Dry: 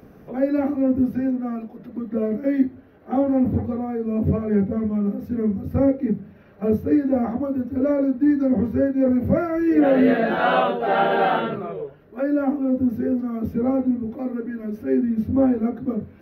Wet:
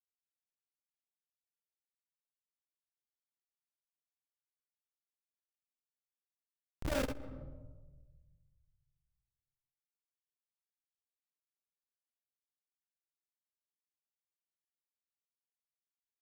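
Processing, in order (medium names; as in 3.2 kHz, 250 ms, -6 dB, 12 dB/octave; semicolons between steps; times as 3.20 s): Doppler pass-by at 6.94 s, 42 m/s, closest 2.9 m; high-pass 75 Hz 12 dB/octave; tilt shelf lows -9.5 dB, about 690 Hz; in parallel at -3 dB: compression 16:1, threshold -46 dBFS, peak gain reduction 27 dB; on the sum: Schmitt trigger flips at -24.5 dBFS; doubling 50 ms -5 dB; flutter echo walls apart 11.2 m, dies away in 0.37 s; on a send at -7 dB: reverberation RT60 1.3 s, pre-delay 48 ms; on the sum: transformer saturation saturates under 130 Hz; trim +9 dB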